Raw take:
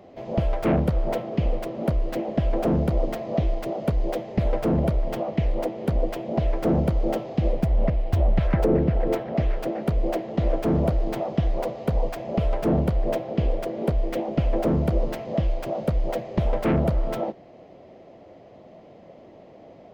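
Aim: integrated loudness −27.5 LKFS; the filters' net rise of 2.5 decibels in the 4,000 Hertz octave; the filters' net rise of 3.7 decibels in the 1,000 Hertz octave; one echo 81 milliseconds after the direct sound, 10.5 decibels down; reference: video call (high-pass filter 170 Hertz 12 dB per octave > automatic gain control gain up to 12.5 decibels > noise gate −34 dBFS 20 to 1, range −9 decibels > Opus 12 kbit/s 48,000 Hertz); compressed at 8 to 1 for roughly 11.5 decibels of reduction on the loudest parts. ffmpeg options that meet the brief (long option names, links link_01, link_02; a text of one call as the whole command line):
ffmpeg -i in.wav -af "equalizer=frequency=1000:width_type=o:gain=5.5,equalizer=frequency=4000:width_type=o:gain=3,acompressor=threshold=-29dB:ratio=8,highpass=170,aecho=1:1:81:0.299,dynaudnorm=maxgain=12.5dB,agate=range=-9dB:threshold=-34dB:ratio=20,volume=2.5dB" -ar 48000 -c:a libopus -b:a 12k out.opus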